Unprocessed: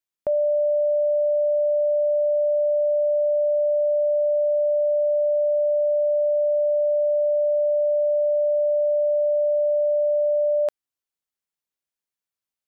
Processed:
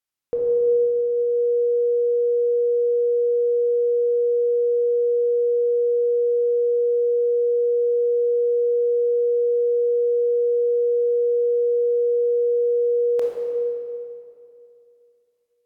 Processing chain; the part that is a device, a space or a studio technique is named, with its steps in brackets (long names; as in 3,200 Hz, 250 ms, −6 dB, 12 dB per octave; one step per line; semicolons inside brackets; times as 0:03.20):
slowed and reverbed (speed change −19%; convolution reverb RT60 2.6 s, pre-delay 20 ms, DRR −1.5 dB)